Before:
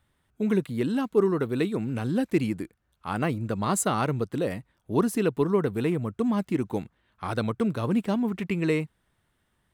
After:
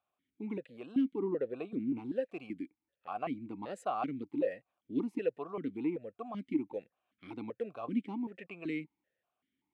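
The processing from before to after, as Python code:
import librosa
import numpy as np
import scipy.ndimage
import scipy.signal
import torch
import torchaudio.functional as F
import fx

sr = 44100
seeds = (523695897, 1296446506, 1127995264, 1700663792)

y = fx.tilt_shelf(x, sr, db=4.0, hz=1300.0, at=(1.22, 1.99))
y = fx.vowel_held(y, sr, hz=5.2)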